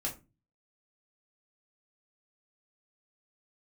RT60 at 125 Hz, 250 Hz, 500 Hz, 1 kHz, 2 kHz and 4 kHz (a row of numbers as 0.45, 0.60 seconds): 0.60, 0.45, 0.30, 0.25, 0.25, 0.20 seconds